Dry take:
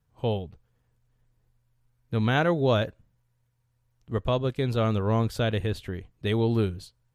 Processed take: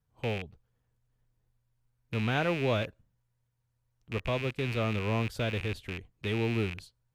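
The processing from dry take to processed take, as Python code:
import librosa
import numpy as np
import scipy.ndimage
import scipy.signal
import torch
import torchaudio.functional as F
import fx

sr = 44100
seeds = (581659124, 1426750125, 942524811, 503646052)

y = fx.rattle_buzz(x, sr, strikes_db=-36.0, level_db=-20.0)
y = y * librosa.db_to_amplitude(-6.0)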